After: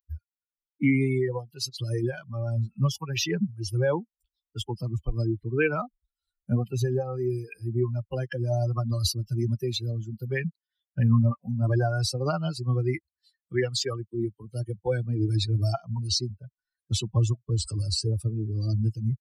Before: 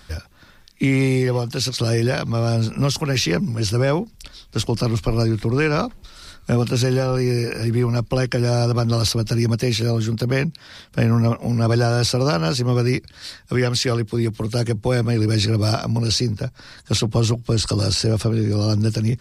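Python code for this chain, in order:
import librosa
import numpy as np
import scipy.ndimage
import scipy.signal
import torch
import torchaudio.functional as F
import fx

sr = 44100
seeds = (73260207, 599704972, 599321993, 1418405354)

y = fx.bin_expand(x, sr, power=3.0)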